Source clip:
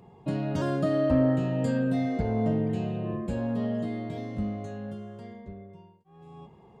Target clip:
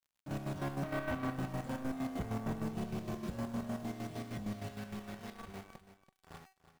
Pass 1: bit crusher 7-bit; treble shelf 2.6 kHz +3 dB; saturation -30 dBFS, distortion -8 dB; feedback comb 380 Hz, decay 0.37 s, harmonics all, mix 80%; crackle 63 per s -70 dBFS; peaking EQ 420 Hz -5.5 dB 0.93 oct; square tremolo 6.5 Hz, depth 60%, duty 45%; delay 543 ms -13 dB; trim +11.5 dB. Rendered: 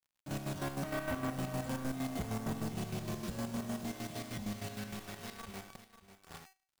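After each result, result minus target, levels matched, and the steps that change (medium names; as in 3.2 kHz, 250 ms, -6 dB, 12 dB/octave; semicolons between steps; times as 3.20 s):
echo 211 ms late; 4 kHz band +5.5 dB
change: delay 332 ms -13 dB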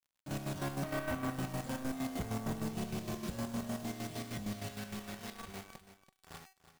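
4 kHz band +5.5 dB
change: treble shelf 2.6 kHz -6.5 dB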